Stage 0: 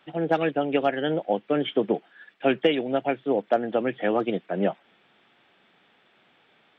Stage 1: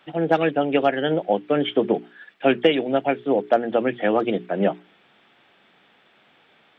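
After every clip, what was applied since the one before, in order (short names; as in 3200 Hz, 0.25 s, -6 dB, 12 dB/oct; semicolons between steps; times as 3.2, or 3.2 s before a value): notches 60/120/180/240/300/360/420 Hz; gain +4 dB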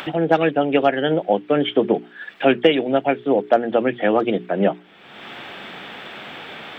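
upward compressor, threshold -21 dBFS; gain +2.5 dB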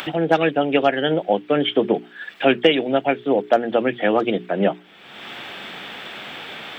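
high shelf 3200 Hz +8 dB; gain -1 dB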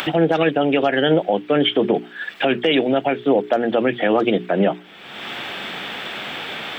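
limiter -12.5 dBFS, peak gain reduction 11 dB; gain +5 dB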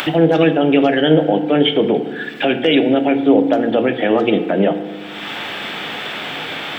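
dynamic EQ 1200 Hz, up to -4 dB, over -29 dBFS, Q 0.79; FDN reverb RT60 1.4 s, low-frequency decay 1.4×, high-frequency decay 0.5×, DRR 7.5 dB; gain +3 dB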